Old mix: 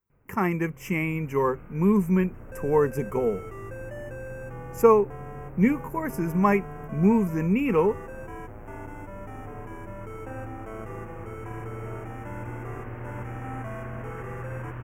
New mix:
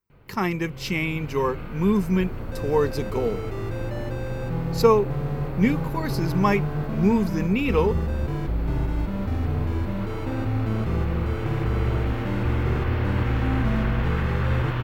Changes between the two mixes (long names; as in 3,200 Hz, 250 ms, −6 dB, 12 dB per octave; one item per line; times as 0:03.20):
first sound +11.0 dB
second sound: remove high-pass filter 560 Hz 12 dB per octave
master: remove Butterworth band-reject 4,100 Hz, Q 0.88